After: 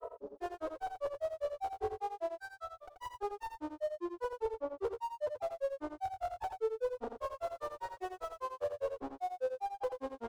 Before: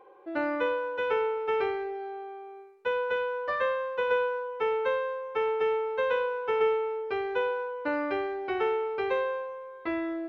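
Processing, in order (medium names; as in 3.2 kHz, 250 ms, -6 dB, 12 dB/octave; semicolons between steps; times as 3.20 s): CVSD coder 64 kbps; spring tank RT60 1.1 s, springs 57 ms, chirp 80 ms, DRR 0 dB; reverse; compression, threshold -34 dBFS, peak gain reduction 14.5 dB; reverse; de-hum 60.69 Hz, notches 28; level rider gain up to 9.5 dB; dynamic bell 610 Hz, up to +5 dB, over -40 dBFS, Q 0.73; valve stage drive 44 dB, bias 0.3; granulator 100 ms, grains 5 per s, pitch spread up and down by 12 st; FFT filter 110 Hz 0 dB, 150 Hz -22 dB, 440 Hz +4 dB, 1.1 kHz -3 dB, 2 kHz -17 dB; on a send: delay 84 ms -7 dB; on the sum: trim +12.5 dB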